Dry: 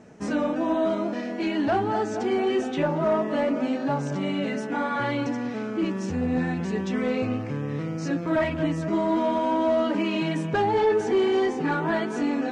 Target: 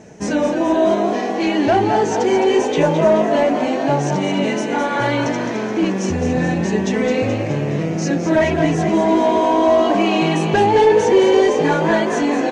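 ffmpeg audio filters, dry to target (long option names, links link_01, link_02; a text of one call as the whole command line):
ffmpeg -i in.wav -filter_complex "[0:a]equalizer=frequency=250:width_type=o:width=0.33:gain=-6,equalizer=frequency=1250:width_type=o:width=0.33:gain=-9,equalizer=frequency=6300:width_type=o:width=0.33:gain=7,asplit=9[link_01][link_02][link_03][link_04][link_05][link_06][link_07][link_08][link_09];[link_02]adelay=213,afreqshift=52,volume=-8dB[link_10];[link_03]adelay=426,afreqshift=104,volume=-12.2dB[link_11];[link_04]adelay=639,afreqshift=156,volume=-16.3dB[link_12];[link_05]adelay=852,afreqshift=208,volume=-20.5dB[link_13];[link_06]adelay=1065,afreqshift=260,volume=-24.6dB[link_14];[link_07]adelay=1278,afreqshift=312,volume=-28.8dB[link_15];[link_08]adelay=1491,afreqshift=364,volume=-32.9dB[link_16];[link_09]adelay=1704,afreqshift=416,volume=-37.1dB[link_17];[link_01][link_10][link_11][link_12][link_13][link_14][link_15][link_16][link_17]amix=inputs=9:normalize=0,volume=9dB" out.wav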